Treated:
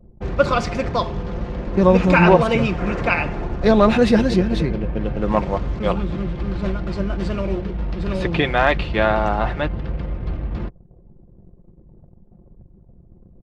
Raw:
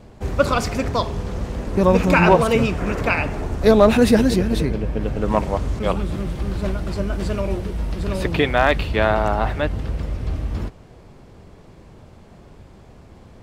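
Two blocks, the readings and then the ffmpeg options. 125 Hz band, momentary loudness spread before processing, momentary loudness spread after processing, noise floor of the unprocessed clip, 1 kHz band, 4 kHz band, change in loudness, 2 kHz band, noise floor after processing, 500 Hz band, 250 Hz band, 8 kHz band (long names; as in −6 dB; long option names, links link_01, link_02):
0.0 dB, 13 LU, 14 LU, −46 dBFS, +0.5 dB, −0.5 dB, 0.0 dB, +0.5 dB, −49 dBFS, 0.0 dB, +1.0 dB, can't be measured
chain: -af "anlmdn=0.631,lowpass=4800,aecho=1:1:5.7:0.38"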